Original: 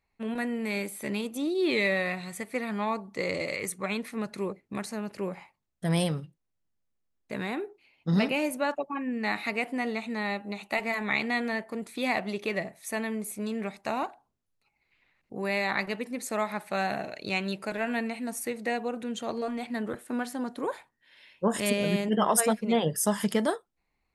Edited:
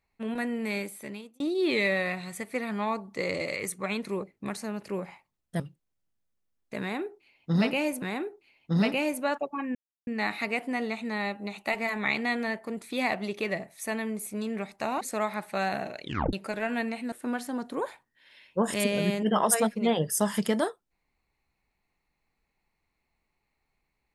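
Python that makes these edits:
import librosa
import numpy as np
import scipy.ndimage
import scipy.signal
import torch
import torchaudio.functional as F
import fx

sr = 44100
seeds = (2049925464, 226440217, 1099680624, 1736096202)

y = fx.edit(x, sr, fx.fade_out_span(start_s=0.72, length_s=0.68),
    fx.cut(start_s=4.05, length_s=0.29),
    fx.cut(start_s=5.89, length_s=0.29),
    fx.repeat(start_s=7.39, length_s=1.21, count=2),
    fx.insert_silence(at_s=9.12, length_s=0.32),
    fx.cut(start_s=14.06, length_s=2.13),
    fx.tape_stop(start_s=17.2, length_s=0.31),
    fx.cut(start_s=18.3, length_s=1.68), tone=tone)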